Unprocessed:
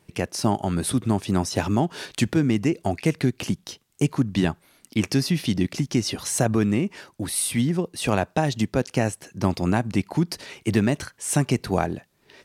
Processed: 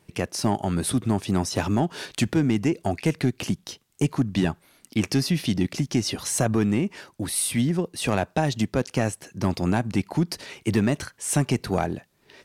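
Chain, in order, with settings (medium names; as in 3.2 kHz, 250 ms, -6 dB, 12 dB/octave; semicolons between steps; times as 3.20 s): saturation -10 dBFS, distortion -20 dB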